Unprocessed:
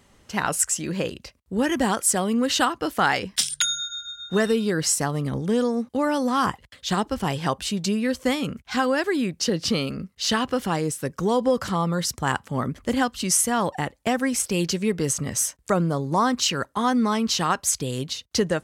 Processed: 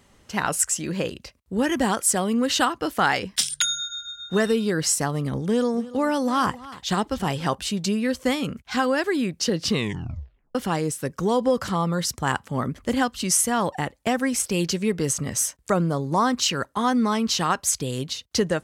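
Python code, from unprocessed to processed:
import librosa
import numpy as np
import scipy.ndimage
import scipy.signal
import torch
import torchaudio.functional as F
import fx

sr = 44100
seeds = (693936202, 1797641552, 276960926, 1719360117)

y = fx.echo_single(x, sr, ms=287, db=-18.0, at=(5.45, 7.55))
y = fx.edit(y, sr, fx.tape_stop(start_s=9.68, length_s=0.87), tone=tone)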